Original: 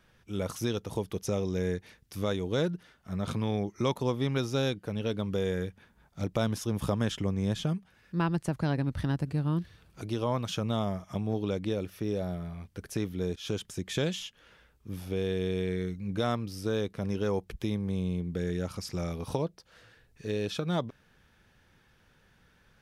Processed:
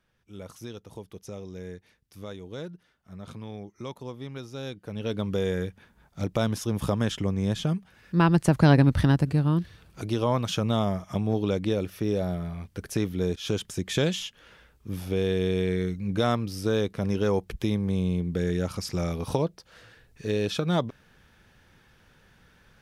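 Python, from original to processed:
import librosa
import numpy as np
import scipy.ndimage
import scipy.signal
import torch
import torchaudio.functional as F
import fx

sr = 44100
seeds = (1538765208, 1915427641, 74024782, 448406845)

y = fx.gain(x, sr, db=fx.line((4.55, -9.0), (5.18, 3.0), (7.61, 3.0), (8.74, 12.0), (9.56, 5.0)))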